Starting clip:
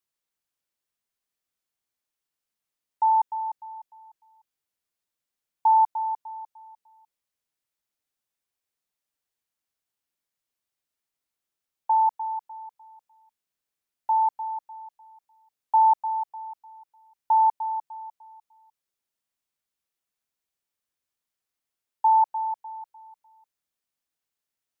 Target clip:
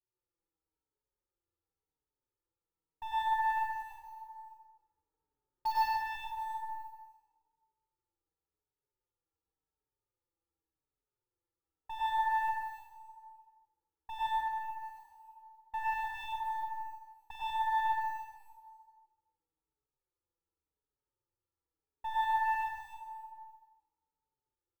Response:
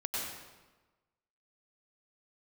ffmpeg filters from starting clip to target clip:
-filter_complex "[0:a]lowpass=frequency=1000:width=0.5412,lowpass=frequency=1000:width=1.3066,equalizer=frequency=730:width=1.4:gain=-12,bandreject=frequency=50:width_type=h:width=6,bandreject=frequency=100:width_type=h:width=6,bandreject=frequency=150:width_type=h:width=6,bandreject=frequency=200:width_type=h:width=6,bandreject=frequency=250:width_type=h:width=6,bandreject=frequency=300:width_type=h:width=6,bandreject=frequency=350:width_type=h:width=6,bandreject=frequency=400:width_type=h:width=6,aecho=1:1:2.3:0.81,asettb=1/sr,asplit=3[link_01][link_02][link_03];[link_01]atrim=end=14.264[link_04];[link_02]atrim=start=14.26:end=14.84,asetpts=PTS-STARTPTS,afade=type=in:duration=0.004:curve=qsin,afade=type=out:start_time=0.576:duration=0.004:curve=qsin,acompressor=threshold=-44dB:ratio=8[link_05];[link_03]atrim=start=14.836[link_06];[link_04][link_05]acrossfade=duration=0.004:curve1=hsin:curve2=qsin[link_07];[link_07][link_06]acrossfade=duration=0.004:curve1=qsin:curve2=hsin,alimiter=level_in=5.5dB:limit=-24dB:level=0:latency=1:release=230,volume=-5.5dB,asplit=3[link_08][link_09][link_10];[link_08]afade=type=out:start_time=3.78:duration=0.02[link_11];[link_09]acontrast=22,afade=type=in:start_time=3.78:duration=0.02,afade=type=out:start_time=5.71:duration=0.02[link_12];[link_10]afade=type=in:start_time=5.71:duration=0.02[link_13];[link_11][link_12][link_13]amix=inputs=3:normalize=0,acrusher=bits=7:mode=log:mix=0:aa=0.000001,aeval=exprs='0.0596*(cos(1*acos(clip(val(0)/0.0596,-1,1)))-cos(1*PI/2))+0.00596*(cos(5*acos(clip(val(0)/0.0596,-1,1)))-cos(5*PI/2))+0.00596*(cos(6*acos(clip(val(0)/0.0596,-1,1)))-cos(6*PI/2))':channel_layout=same,aecho=1:1:47|140:0.447|0.266[link_14];[1:a]atrim=start_sample=2205[link_15];[link_14][link_15]afir=irnorm=-1:irlink=0,asplit=2[link_16][link_17];[link_17]adelay=5.1,afreqshift=-0.9[link_18];[link_16][link_18]amix=inputs=2:normalize=1"

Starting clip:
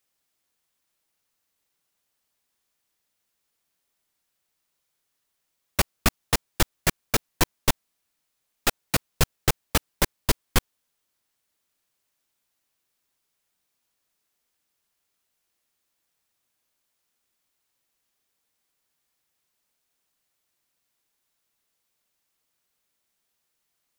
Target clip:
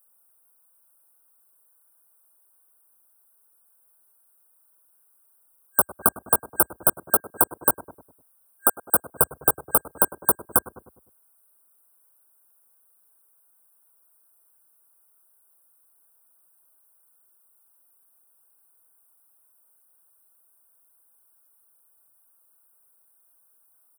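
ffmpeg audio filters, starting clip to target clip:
ffmpeg -i in.wav -filter_complex "[0:a]highpass=frequency=66:width=0.5412,highpass=frequency=66:width=1.3066,bass=frequency=250:gain=-15,treble=frequency=4000:gain=10,asplit=2[link_01][link_02];[link_02]adelay=101,lowpass=frequency=870:poles=1,volume=-13.5dB,asplit=2[link_03][link_04];[link_04]adelay=101,lowpass=frequency=870:poles=1,volume=0.49,asplit=2[link_05][link_06];[link_06]adelay=101,lowpass=frequency=870:poles=1,volume=0.49,asplit=2[link_07][link_08];[link_08]adelay=101,lowpass=frequency=870:poles=1,volume=0.49,asplit=2[link_09][link_10];[link_10]adelay=101,lowpass=frequency=870:poles=1,volume=0.49[link_11];[link_01][link_03][link_05][link_07][link_09][link_11]amix=inputs=6:normalize=0,acrossover=split=490|2300[link_12][link_13][link_14];[link_14]asoftclip=type=tanh:threshold=-14.5dB[link_15];[link_12][link_13][link_15]amix=inputs=3:normalize=0,equalizer=frequency=5200:width_type=o:width=1.4:gain=-6.5,asplit=2[link_16][link_17];[link_17]acrusher=bits=4:mix=0:aa=0.000001,volume=-5dB[link_18];[link_16][link_18]amix=inputs=2:normalize=0,afftfilt=real='re*(1-between(b*sr/4096,1600,8200))':imag='im*(1-between(b*sr/4096,1600,8200))':win_size=4096:overlap=0.75,acompressor=threshold=-24dB:ratio=6,volume=8dB" out.wav

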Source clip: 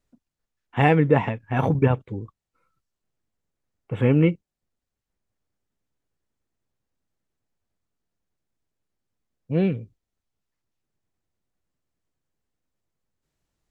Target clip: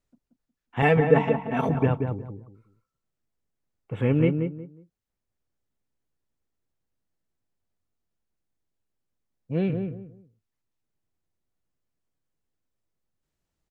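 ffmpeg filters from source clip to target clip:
ffmpeg -i in.wav -filter_complex "[0:a]asettb=1/sr,asplit=3[link_01][link_02][link_03];[link_01]atrim=end=0.824[link_04];[link_02]atrim=start=0.82:end=1.69,asetpts=PTS-STARTPTS,afade=type=in:duration=0.004:curve=qsin,afade=type=out:start_time=0.866:duration=0.004:curve=qsin,aecho=1:1:4.5:0.86,atrim=end_sample=38367[link_05];[link_03]atrim=start=1.686[link_06];[link_04][link_05]acrossfade=duration=0.004:curve1=hsin:curve2=qsin[link_07];[link_07][link_06]acrossfade=duration=0.004:curve1=qsin:curve2=hsin,asplit=2[link_08][link_09];[link_09]adelay=181,lowpass=frequency=1100:poles=1,volume=-5dB,asplit=2[link_10][link_11];[link_11]adelay=181,lowpass=frequency=1100:poles=1,volume=0.26,asplit=2[link_12][link_13];[link_13]adelay=181,lowpass=frequency=1100:poles=1,volume=0.26[link_14];[link_08][link_10][link_12][link_14]amix=inputs=4:normalize=0,volume=-4dB" out.wav

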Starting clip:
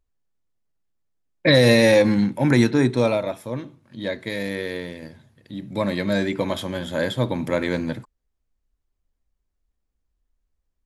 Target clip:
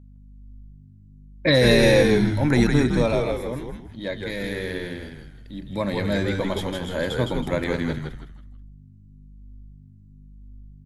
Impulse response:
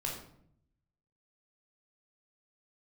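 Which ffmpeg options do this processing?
-filter_complex "[0:a]aeval=exprs='val(0)+0.00708*(sin(2*PI*50*n/s)+sin(2*PI*2*50*n/s)/2+sin(2*PI*3*50*n/s)/3+sin(2*PI*4*50*n/s)/4+sin(2*PI*5*50*n/s)/5)':channel_layout=same,asplit=2[link_01][link_02];[link_02]asplit=4[link_03][link_04][link_05][link_06];[link_03]adelay=161,afreqshift=-99,volume=-3.5dB[link_07];[link_04]adelay=322,afreqshift=-198,volume=-12.9dB[link_08];[link_05]adelay=483,afreqshift=-297,volume=-22.2dB[link_09];[link_06]adelay=644,afreqshift=-396,volume=-31.6dB[link_10];[link_07][link_08][link_09][link_10]amix=inputs=4:normalize=0[link_11];[link_01][link_11]amix=inputs=2:normalize=0,volume=-2.5dB"

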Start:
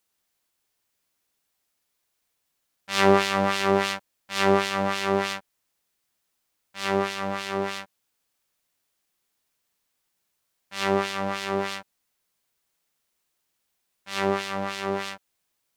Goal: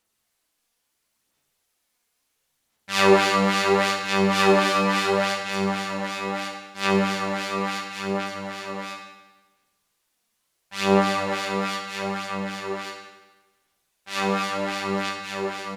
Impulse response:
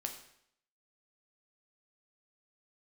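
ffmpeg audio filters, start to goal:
-filter_complex "[0:a]aecho=1:1:1142:0.501,aphaser=in_gain=1:out_gain=1:delay=4.3:decay=0.45:speed=0.73:type=sinusoidal[link_01];[1:a]atrim=start_sample=2205,asetrate=25578,aresample=44100[link_02];[link_01][link_02]afir=irnorm=-1:irlink=0"

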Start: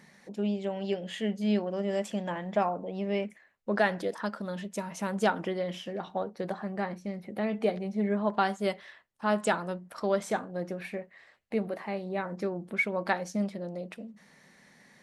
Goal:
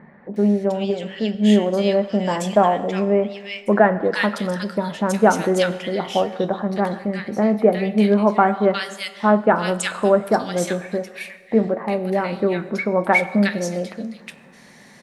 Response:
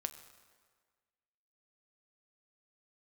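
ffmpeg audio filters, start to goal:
-filter_complex "[0:a]asettb=1/sr,asplit=3[link_01][link_02][link_03];[link_01]atrim=end=0.904[link_04];[link_02]atrim=start=0.9:end=1.35,asetpts=PTS-STARTPTS,afade=type=in:duration=0.004:curve=qsin,afade=type=out:start_time=0.446:duration=0.004:curve=qsin,acompressor=threshold=-32dB:ratio=4[link_05];[link_03]atrim=start=1.346[link_06];[link_04][link_05]acrossfade=duration=0.004:curve1=hsin:curve2=qsin[link_07];[link_07][link_06]acrossfade=duration=0.004:curve1=qsin:curve2=hsin,acrossover=split=1700[link_08][link_09];[link_09]adelay=360[link_10];[link_08][link_10]amix=inputs=2:normalize=0,asplit=2[link_11][link_12];[1:a]atrim=start_sample=2205[link_13];[link_12][link_13]afir=irnorm=-1:irlink=0,volume=8.5dB[link_14];[link_11][link_14]amix=inputs=2:normalize=0,volume=2dB"

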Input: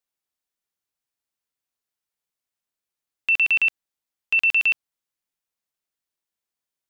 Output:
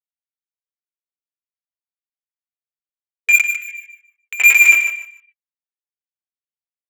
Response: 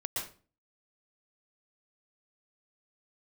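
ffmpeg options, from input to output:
-filter_complex "[0:a]acrossover=split=120[link_01][link_02];[link_02]acontrast=33[link_03];[link_01][link_03]amix=inputs=2:normalize=0,aphaser=in_gain=1:out_gain=1:delay=3.9:decay=0.62:speed=0.34:type=triangular,highpass=frequency=170:width_type=q:width=0.5412,highpass=frequency=170:width_type=q:width=1.307,lowpass=frequency=3100:width_type=q:width=0.5176,lowpass=frequency=3100:width_type=q:width=0.7071,lowpass=frequency=3100:width_type=q:width=1.932,afreqshift=-290,highshelf=frequency=2200:gain=11,agate=range=-33dB:threshold=-24dB:ratio=3:detection=peak,asplit=2[link_04][link_05];[1:a]atrim=start_sample=2205,afade=type=out:start_time=0.17:duration=0.01,atrim=end_sample=7938[link_06];[link_05][link_06]afir=irnorm=-1:irlink=0,volume=-6.5dB[link_07];[link_04][link_07]amix=inputs=2:normalize=0,asoftclip=type=hard:threshold=-8.5dB,flanger=delay=19:depth=2.7:speed=1.1,aecho=1:1:6.8:0.9,asettb=1/sr,asplit=3[link_08][link_09][link_10];[link_08]atrim=end=3.414[link_11];[link_09]atrim=start=3.41:end=4.4,asetpts=PTS-STARTPTS,afade=type=in:duration=0.004:curve=qsin,afade=type=out:start_time=0.986:duration=0.004:curve=qsin,acompressor=threshold=-32dB:ratio=6[link_12];[link_10]atrim=start=4.396[link_13];[link_11][link_12]acrossfade=duration=0.004:curve1=hsin:curve2=qsin[link_14];[link_14][link_13]acrossfade=duration=0.004:curve1=qsin:curve2=hsin,aecho=1:1:150|300|450:0.355|0.071|0.0142,afftfilt=real='re*gte(b*sr/1024,240*pow(1600/240,0.5+0.5*sin(2*PI*0.59*pts/sr)))':imag='im*gte(b*sr/1024,240*pow(1600/240,0.5+0.5*sin(2*PI*0.59*pts/sr)))':win_size=1024:overlap=0.75,volume=1.5dB"

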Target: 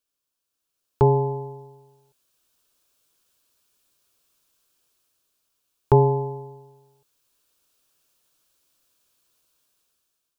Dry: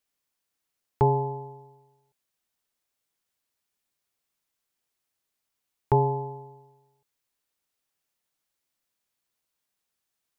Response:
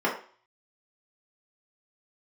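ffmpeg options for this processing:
-af "dynaudnorm=framelen=350:gausssize=5:maxgain=13.5dB,equalizer=frequency=100:width_type=o:width=0.33:gain=-5,equalizer=frequency=200:width_type=o:width=0.33:gain=-8,equalizer=frequency=800:width_type=o:width=0.33:gain=-8,equalizer=frequency=2000:width_type=o:width=0.33:gain=-12"

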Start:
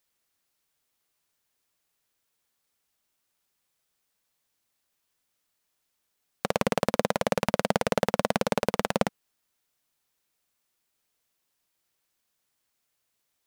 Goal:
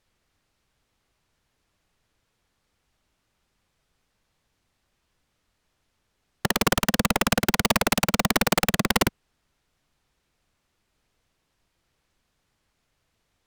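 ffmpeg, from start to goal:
ffmpeg -i in.wav -af "aemphasis=mode=reproduction:type=bsi,apsyclip=12dB,aeval=exprs='(mod(2.37*val(0)+1,2)-1)/2.37':channel_layout=same,volume=-3dB" out.wav

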